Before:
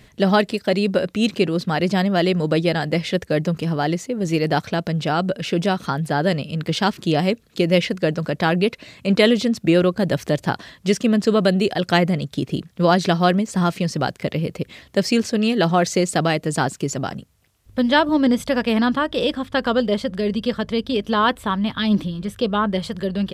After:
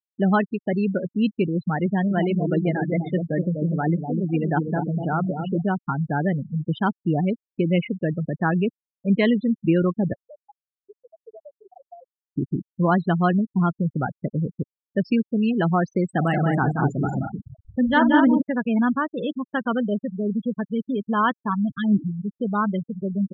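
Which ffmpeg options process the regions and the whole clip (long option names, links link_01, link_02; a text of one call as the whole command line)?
ffmpeg -i in.wav -filter_complex "[0:a]asettb=1/sr,asplit=3[link_01][link_02][link_03];[link_01]atrim=end=1.864[link_04];[link_02]atrim=start=1.86:end=5.63,asetpts=PTS-STARTPTS,afade=type=in:duration=0.004:curve=qsin,afade=type=out:start_time=3.766:duration=0.004:curve=qsin,highpass=frequency=110:poles=1,asplit=2[link_05][link_06];[link_06]adelay=247,lowpass=frequency=1100:poles=1,volume=-4dB,asplit=2[link_07][link_08];[link_08]adelay=247,lowpass=frequency=1100:poles=1,volume=0.46,asplit=2[link_09][link_10];[link_10]adelay=247,lowpass=frequency=1100:poles=1,volume=0.46,asplit=2[link_11][link_12];[link_12]adelay=247,lowpass=frequency=1100:poles=1,volume=0.46,asplit=2[link_13][link_14];[link_14]adelay=247,lowpass=frequency=1100:poles=1,volume=0.46,asplit=2[link_15][link_16];[link_16]adelay=247,lowpass=frequency=1100:poles=1,volume=0.46[link_17];[link_05][link_07][link_09][link_11][link_13][link_15][link_17]amix=inputs=7:normalize=0,atrim=end_sample=166257[link_18];[link_03]atrim=start=5.626[link_19];[link_04][link_18]acrossfade=duration=0.004:curve1=hsin:curve2=qsin[link_20];[link_20][link_19]acrossfade=duration=0.004:curve1=qsin:curve2=hsin,asettb=1/sr,asplit=3[link_21][link_22][link_23];[link_21]atrim=end=10.134[link_24];[link_22]atrim=start=10.13:end=12.37,asetpts=PTS-STARTPTS,afade=type=in:duration=0.004:curve=qsin,afade=type=out:start_time=2.236:duration=0.004:curve=qsin,lowshelf=frequency=420:width_type=q:width=1.5:gain=-12.5,acompressor=threshold=-37dB:ratio=2.5:attack=3.2:release=140:knee=1:detection=peak[link_25];[link_23]atrim=start=12.366[link_26];[link_24][link_25]acrossfade=duration=0.004:curve1=hsin:curve2=qsin[link_27];[link_27][link_26]acrossfade=duration=0.004:curve1=qsin:curve2=hsin,asettb=1/sr,asplit=3[link_28][link_29][link_30];[link_28]atrim=end=16.094[link_31];[link_29]atrim=start=16.09:end=18.42,asetpts=PTS-STARTPTS,afade=type=in:duration=0.004:curve=qsin,afade=type=out:start_time=2.326:duration=0.004:curve=qsin,aeval=exprs='val(0)+0.5*0.0251*sgn(val(0))':channel_layout=same,aecho=1:1:48|179|217|514:0.299|0.631|0.596|0.266,atrim=end_sample=102753[link_32];[link_30]atrim=start=18.416[link_33];[link_31][link_32]acrossfade=duration=0.004:curve1=hsin:curve2=qsin[link_34];[link_34][link_33]acrossfade=duration=0.004:curve1=qsin:curve2=hsin,afftfilt=real='re*gte(hypot(re,im),0.178)':imag='im*gte(hypot(re,im),0.178)':win_size=1024:overlap=0.75,lowpass=1900,equalizer=frequency=530:width=1.4:gain=-8.5" out.wav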